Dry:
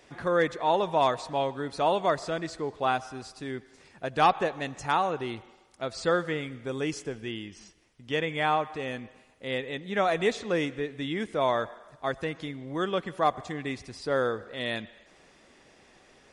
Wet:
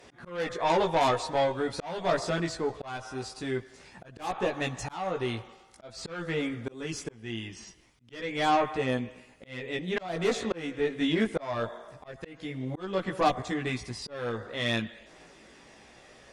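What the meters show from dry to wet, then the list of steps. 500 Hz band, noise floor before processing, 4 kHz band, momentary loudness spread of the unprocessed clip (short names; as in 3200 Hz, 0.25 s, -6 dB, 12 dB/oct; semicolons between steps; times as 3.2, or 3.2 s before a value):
-2.0 dB, -59 dBFS, 0.0 dB, 13 LU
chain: added harmonics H 5 -12 dB, 6 -22 dB, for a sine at -12.5 dBFS; chorus voices 2, 0.23 Hz, delay 17 ms, depth 1.2 ms; auto swell 0.392 s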